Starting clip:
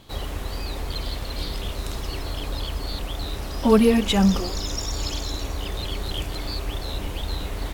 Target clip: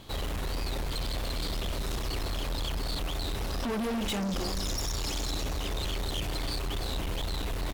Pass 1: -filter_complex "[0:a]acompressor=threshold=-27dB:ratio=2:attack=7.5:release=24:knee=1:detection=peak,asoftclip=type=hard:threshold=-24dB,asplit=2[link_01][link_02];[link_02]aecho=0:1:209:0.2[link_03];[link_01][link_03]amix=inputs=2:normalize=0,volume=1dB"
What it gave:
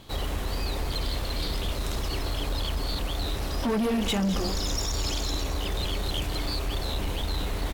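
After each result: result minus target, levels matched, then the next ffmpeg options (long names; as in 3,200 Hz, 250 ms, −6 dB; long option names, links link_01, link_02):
echo 98 ms early; hard clipping: distortion −6 dB
-filter_complex "[0:a]acompressor=threshold=-27dB:ratio=2:attack=7.5:release=24:knee=1:detection=peak,asoftclip=type=hard:threshold=-24dB,asplit=2[link_01][link_02];[link_02]aecho=0:1:307:0.2[link_03];[link_01][link_03]amix=inputs=2:normalize=0,volume=1dB"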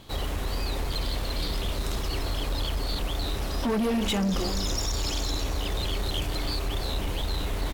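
hard clipping: distortion −6 dB
-filter_complex "[0:a]acompressor=threshold=-27dB:ratio=2:attack=7.5:release=24:knee=1:detection=peak,asoftclip=type=hard:threshold=-30.5dB,asplit=2[link_01][link_02];[link_02]aecho=0:1:307:0.2[link_03];[link_01][link_03]amix=inputs=2:normalize=0,volume=1dB"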